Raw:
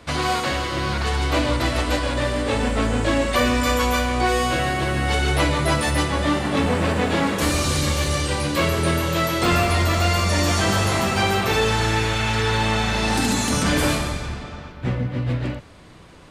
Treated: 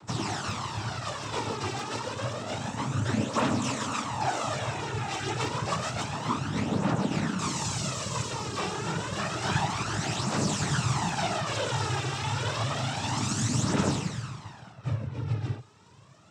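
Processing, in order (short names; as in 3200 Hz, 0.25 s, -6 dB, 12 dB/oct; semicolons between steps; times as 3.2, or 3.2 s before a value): noise vocoder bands 12; phaser 0.29 Hz, delay 2.6 ms, feedback 49%; ten-band EQ 250 Hz -5 dB, 500 Hz -10 dB, 2000 Hz -9 dB, 4000 Hz -5 dB; gain -3.5 dB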